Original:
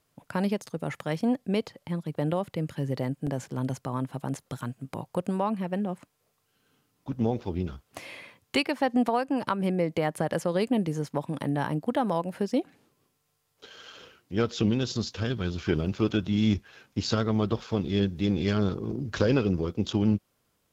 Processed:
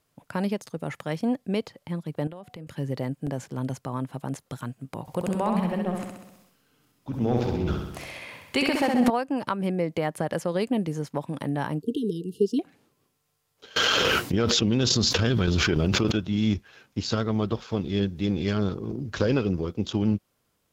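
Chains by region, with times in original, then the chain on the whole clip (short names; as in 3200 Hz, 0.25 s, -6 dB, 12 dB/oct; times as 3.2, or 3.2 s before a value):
2.27–2.67 de-hum 245.1 Hz, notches 3 + compressor 4:1, threshold -39 dBFS
5.01–9.1 transient shaper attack 0 dB, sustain +12 dB + feedback echo 65 ms, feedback 60%, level -4 dB
11.82–12.59 brick-wall FIR band-stop 460–2700 Hz + bell 450 Hz +12.5 dB 0.54 oct
13.76–16.12 tremolo saw down 3.5 Hz, depth 70% + fast leveller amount 100%
whole clip: dry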